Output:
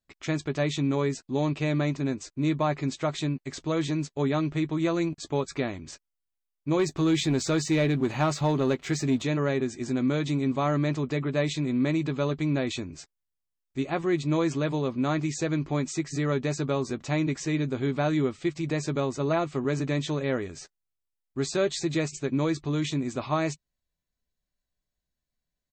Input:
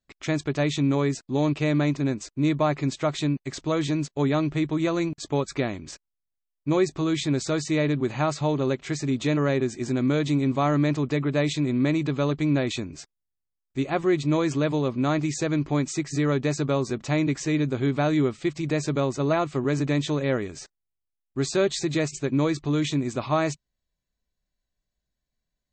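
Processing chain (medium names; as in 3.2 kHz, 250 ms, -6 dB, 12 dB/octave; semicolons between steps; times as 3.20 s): 6.79–9.22 s: waveshaping leveller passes 1; doubling 12 ms -11 dB; trim -3 dB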